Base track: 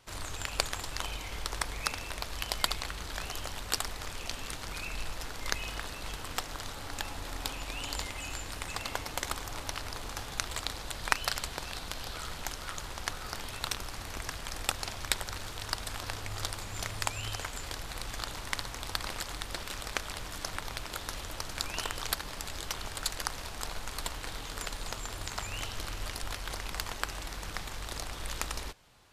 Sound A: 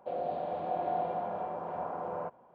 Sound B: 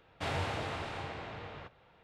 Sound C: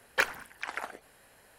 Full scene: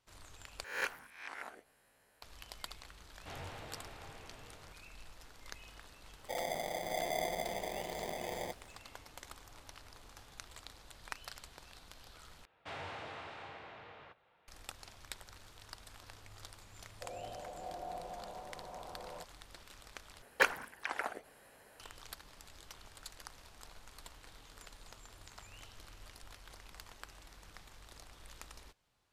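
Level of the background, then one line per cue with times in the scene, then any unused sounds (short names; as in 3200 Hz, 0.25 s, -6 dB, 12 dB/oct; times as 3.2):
base track -16.5 dB
0.64 replace with C -12.5 dB + spectral swells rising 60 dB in 0.57 s
3.05 add B -12.5 dB
6.23 add A -4 dB + sample-and-hold 32×
12.45 replace with B -11.5 dB + overdrive pedal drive 11 dB, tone 3400 Hz, clips at -22.5 dBFS
16.95 add A -12 dB
20.22 replace with C -3 dB + bell 470 Hz +4 dB 2.6 oct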